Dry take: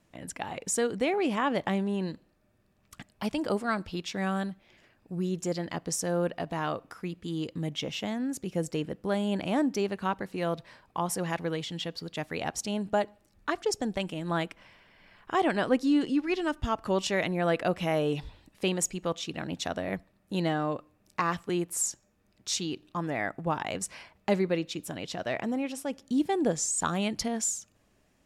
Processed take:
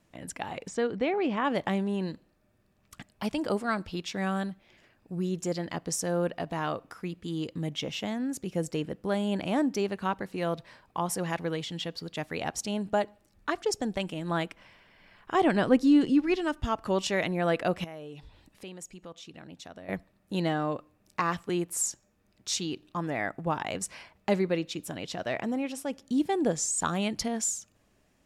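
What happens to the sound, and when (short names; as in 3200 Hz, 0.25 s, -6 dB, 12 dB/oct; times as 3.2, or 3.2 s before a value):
0.68–1.45 air absorption 160 m
15.35–16.36 low shelf 280 Hz +8 dB
17.84–19.89 compressor 2:1, threshold -52 dBFS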